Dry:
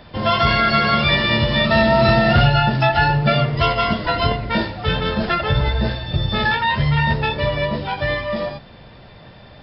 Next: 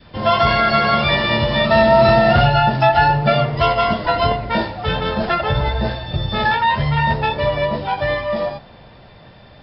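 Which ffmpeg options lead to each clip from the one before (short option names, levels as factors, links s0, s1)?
-af "adynamicequalizer=threshold=0.0251:dfrequency=770:dqfactor=1.2:tfrequency=770:tqfactor=1.2:attack=5:release=100:ratio=0.375:range=3.5:mode=boostabove:tftype=bell,volume=0.841"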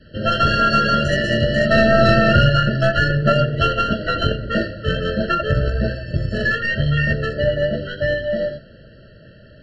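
-af "aeval=exprs='0.794*(cos(1*acos(clip(val(0)/0.794,-1,1)))-cos(1*PI/2))+0.2*(cos(2*acos(clip(val(0)/0.794,-1,1)))-cos(2*PI/2))+0.02*(cos(7*acos(clip(val(0)/0.794,-1,1)))-cos(7*PI/2))':c=same,afftfilt=real='re*eq(mod(floor(b*sr/1024/660),2),0)':imag='im*eq(mod(floor(b*sr/1024/660),2),0)':win_size=1024:overlap=0.75,volume=1.19"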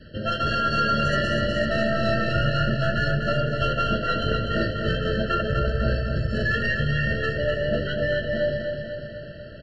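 -af "areverse,acompressor=threshold=0.0562:ratio=4,areverse,aecho=1:1:248|496|744|992|1240|1488|1736|1984:0.531|0.308|0.179|0.104|0.0601|0.0348|0.0202|0.0117,volume=1.26"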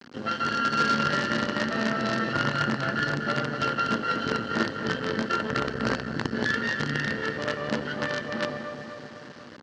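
-af "acrusher=bits=4:dc=4:mix=0:aa=0.000001,highpass=180,equalizer=f=250:t=q:w=4:g=7,equalizer=f=640:t=q:w=4:g=-8,equalizer=f=1500:t=q:w=4:g=3,equalizer=f=2400:t=q:w=4:g=-7,equalizer=f=3600:t=q:w=4:g=-5,lowpass=f=5200:w=0.5412,lowpass=f=5200:w=1.3066"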